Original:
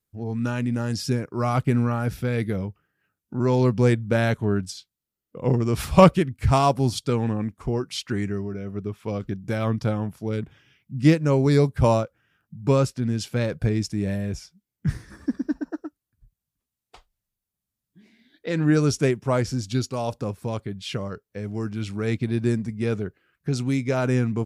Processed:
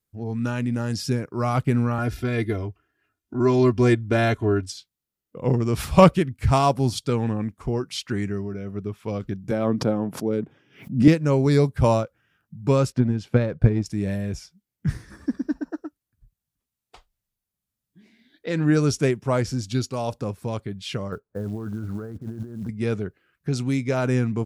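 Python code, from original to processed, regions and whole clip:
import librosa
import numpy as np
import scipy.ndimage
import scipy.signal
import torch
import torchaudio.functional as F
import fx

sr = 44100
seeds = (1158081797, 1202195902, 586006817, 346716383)

y = fx.chain(x, sr, fx.high_shelf(hz=9700.0, db=-8.5),
    fx.comb(ms=2.9, depth=0.95), at=(1.98, 4.72))
y = fx.chain(y, sr, fx.highpass(hz=250.0, slope=12),
    fx.tilt_shelf(db=8.5, hz=970.0),
    fx.pre_swell(db_per_s=140.0), at=(9.51, 11.08))
y = fx.chain(y, sr, fx.lowpass(hz=1400.0, slope=6),
    fx.transient(attack_db=9, sustain_db=-1), at=(12.92, 13.86))
y = fx.chain(y, sr, fx.ellip_lowpass(hz=1500.0, order=4, stop_db=50),
    fx.over_compress(threshold_db=-32.0, ratio=-1.0),
    fx.quant_float(bits=4), at=(21.12, 22.69))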